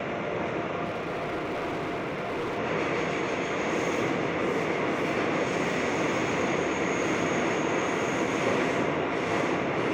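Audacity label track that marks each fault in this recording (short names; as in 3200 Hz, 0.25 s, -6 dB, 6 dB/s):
0.840000	2.590000	clipped -27.5 dBFS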